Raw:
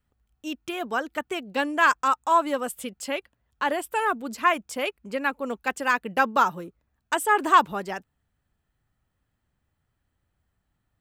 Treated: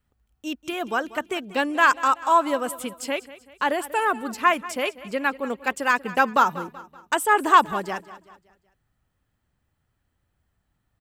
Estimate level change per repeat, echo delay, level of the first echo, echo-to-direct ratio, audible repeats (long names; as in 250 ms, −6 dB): −7.0 dB, 190 ms, −17.0 dB, −16.0 dB, 3